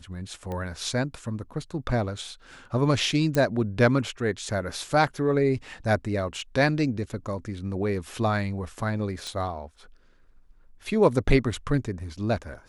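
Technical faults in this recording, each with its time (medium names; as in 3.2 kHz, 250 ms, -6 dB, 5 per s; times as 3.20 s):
0.52 s: pop -22 dBFS
3.35 s: pop -12 dBFS
9.27 s: pop -22 dBFS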